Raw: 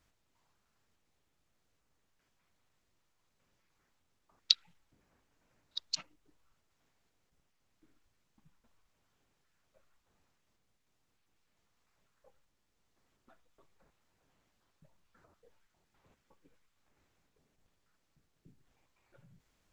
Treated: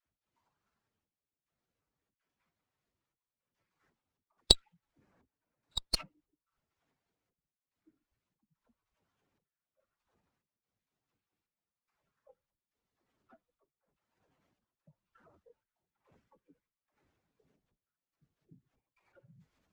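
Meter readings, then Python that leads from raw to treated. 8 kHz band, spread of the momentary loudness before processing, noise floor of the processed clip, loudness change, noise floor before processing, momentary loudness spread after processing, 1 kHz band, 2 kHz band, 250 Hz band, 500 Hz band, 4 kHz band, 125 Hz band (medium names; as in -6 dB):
+5.5 dB, 15 LU, under -85 dBFS, +3.5 dB, -79 dBFS, 14 LU, +12.5 dB, 0.0 dB, +17.0 dB, +21.0 dB, +3.0 dB, +17.5 dB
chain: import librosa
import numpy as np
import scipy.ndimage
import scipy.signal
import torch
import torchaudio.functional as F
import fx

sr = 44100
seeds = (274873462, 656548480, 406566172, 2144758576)

y = fx.spec_expand(x, sr, power=1.5)
y = fx.highpass(y, sr, hz=150.0, slope=6)
y = fx.step_gate(y, sr, bpm=72, pattern='.xxxx..xxx', floor_db=-12.0, edge_ms=4.5)
y = fx.dispersion(y, sr, late='lows', ms=62.0, hz=500.0)
y = fx.running_max(y, sr, window=3)
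y = F.gain(torch.from_numpy(y), 4.5).numpy()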